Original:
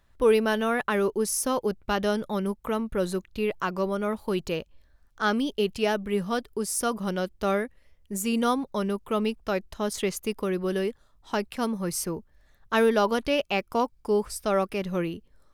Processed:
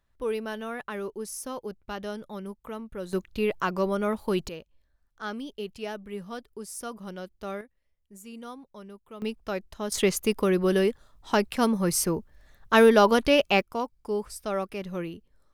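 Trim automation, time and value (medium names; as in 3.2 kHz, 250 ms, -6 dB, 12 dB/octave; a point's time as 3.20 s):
-9.5 dB
from 3.13 s +1 dB
from 4.49 s -10 dB
from 7.61 s -17 dB
from 9.22 s -4 dB
from 9.92 s +4.5 dB
from 13.62 s -5 dB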